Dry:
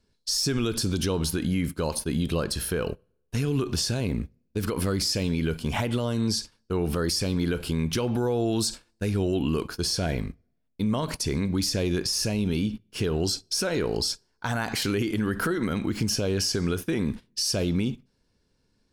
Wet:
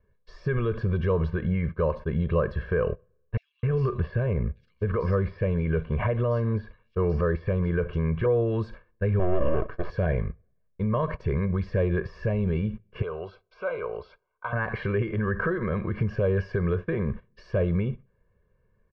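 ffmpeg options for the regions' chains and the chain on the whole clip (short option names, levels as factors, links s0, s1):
-filter_complex "[0:a]asettb=1/sr,asplit=3[s0][s1][s2];[s0]atrim=end=3.374[s3];[s1]atrim=start=3.37:end=8.26,asetpts=PTS-STARTPTS,afade=t=in:d=0.004:c=qsin,afade=t=out:st=4.886:d=0.004:c=qsin,lowpass=7200,acrossover=split=4200[s4][s5];[s4]adelay=260[s6];[s6][s5]amix=inputs=2:normalize=0,atrim=end_sample=215649[s7];[s2]atrim=start=8.256[s8];[s3][s7]acrossfade=d=0.004:c1=hsin:c2=qsin[s9];[s9][s8]acrossfade=d=0.004:c1=qsin:c2=hsin,asettb=1/sr,asplit=3[s10][s11][s12];[s10]atrim=end=9.194[s13];[s11]atrim=start=9.19:end=9.9,asetpts=PTS-STARTPTS,afade=t=in:d=0.004:c=qsin,afade=t=out:st=0.706:d=0.004:c=qsin,highpass=f=110:w=0.5412,highpass=f=110:w=1.3066,equalizer=f=300:t=o:w=0.57:g=11.5,aeval=exprs='max(val(0),0)':c=same[s14];[s12]atrim=start=9.896[s15];[s13][s14]acrossfade=d=0.004:c1=hsin:c2=qsin[s16];[s16][s15]acrossfade=d=0.004:c1=qsin:c2=hsin,asettb=1/sr,asplit=3[s17][s18][s19];[s17]atrim=end=13.024[s20];[s18]atrim=start=13.02:end=14.53,asetpts=PTS-STARTPTS,afade=t=in:d=0.004:c=qsin,afade=t=out:st=1.506:d=0.004:c=qsin,asuperstop=centerf=1800:order=8:qfactor=3.9,acrossover=split=530 4500:gain=0.126 1 0.0708[s21][s22][s23];[s21][s22][s23]amix=inputs=3:normalize=0[s24];[s19]atrim=start=14.526[s25];[s20][s24]acrossfade=d=0.004:c1=hsin:c2=qsin[s26];[s26][s25]acrossfade=d=0.004:c1=qsin:c2=hsin,lowpass=f=1900:w=0.5412,lowpass=f=1900:w=1.3066,bandreject=f=680:w=12,aecho=1:1:1.8:0.93"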